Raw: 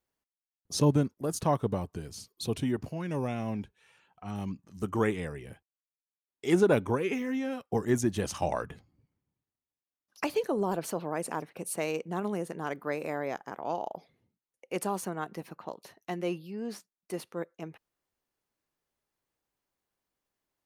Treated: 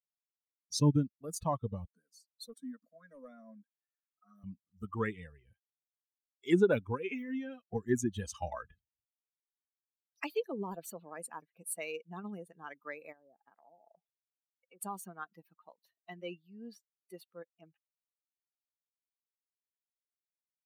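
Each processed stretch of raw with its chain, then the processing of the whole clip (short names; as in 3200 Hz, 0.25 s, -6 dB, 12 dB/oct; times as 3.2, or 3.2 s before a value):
1.85–4.44 HPF 270 Hz + fixed phaser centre 550 Hz, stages 8 + hard clip -30 dBFS
13.12–14.81 treble ducked by the level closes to 540 Hz, closed at -28.5 dBFS + compressor 16:1, threshold -36 dBFS
whole clip: per-bin expansion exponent 2; dynamic EQ 720 Hz, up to -5 dB, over -50 dBFS, Q 2.5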